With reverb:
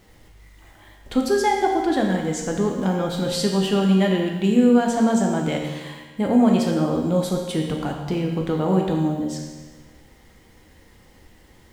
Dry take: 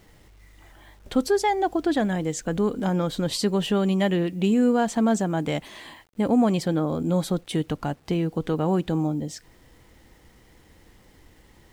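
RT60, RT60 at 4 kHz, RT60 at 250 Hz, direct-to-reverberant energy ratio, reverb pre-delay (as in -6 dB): 1.3 s, 1.3 s, 1.3 s, 0.5 dB, 13 ms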